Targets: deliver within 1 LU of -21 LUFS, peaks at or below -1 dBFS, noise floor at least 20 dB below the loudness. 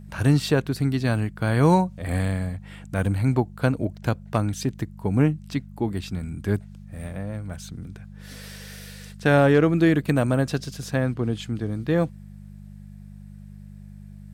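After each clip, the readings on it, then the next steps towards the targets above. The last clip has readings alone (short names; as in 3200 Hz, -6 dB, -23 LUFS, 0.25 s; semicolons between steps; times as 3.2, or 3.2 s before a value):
hum 50 Hz; harmonics up to 200 Hz; hum level -39 dBFS; loudness -24.0 LUFS; peak -7.5 dBFS; loudness target -21.0 LUFS
-> de-hum 50 Hz, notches 4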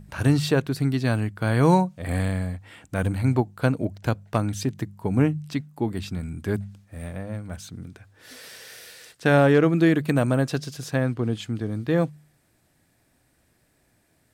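hum none; loudness -24.0 LUFS; peak -7.5 dBFS; loudness target -21.0 LUFS
-> gain +3 dB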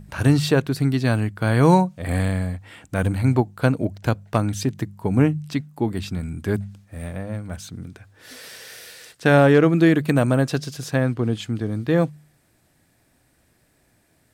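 loudness -21.0 LUFS; peak -4.5 dBFS; noise floor -63 dBFS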